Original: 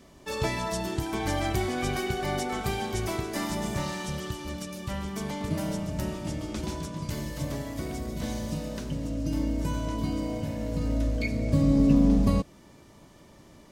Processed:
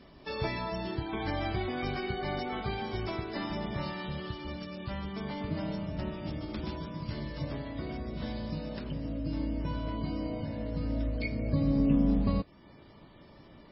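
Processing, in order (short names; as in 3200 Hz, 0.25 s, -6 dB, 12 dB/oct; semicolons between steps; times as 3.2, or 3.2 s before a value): in parallel at -2.5 dB: compressor 10:1, threshold -38 dBFS, peak gain reduction 22.5 dB; on the sum: gain -5.5 dB; MP3 16 kbps 16000 Hz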